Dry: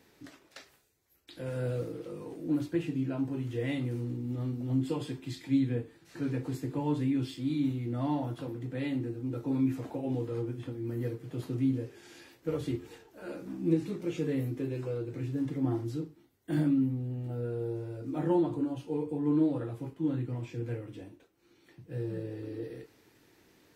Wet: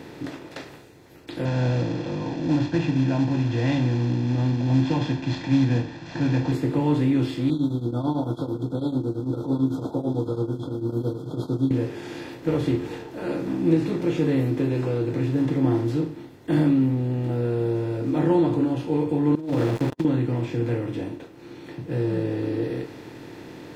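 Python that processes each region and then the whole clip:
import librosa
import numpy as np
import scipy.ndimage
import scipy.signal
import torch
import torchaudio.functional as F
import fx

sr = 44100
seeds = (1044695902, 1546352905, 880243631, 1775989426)

y = fx.chain(x, sr, fx.cvsd(bps=32000),
    fx.comb(ms=1.2, depth=0.84), at=(1.45, 6.52))
y = fx.chain(y, sr, fx.tremolo_shape(shape='triangle', hz=9.0, depth_pct=90),
    fx.brickwall_bandstop(low_hz=1500.0, high_hz=3200.0), at=(7.5, 11.71))
y = fx.chain(y, sr, fx.sample_gate(floor_db=-44.5),
    fx.over_compress(threshold_db=-34.0, ratio=-0.5), at=(19.35, 20.05))
y = fx.bin_compress(y, sr, power=0.6)
y = fx.high_shelf(y, sr, hz=6100.0, db=-8.5)
y = y * 10.0 ** (5.5 / 20.0)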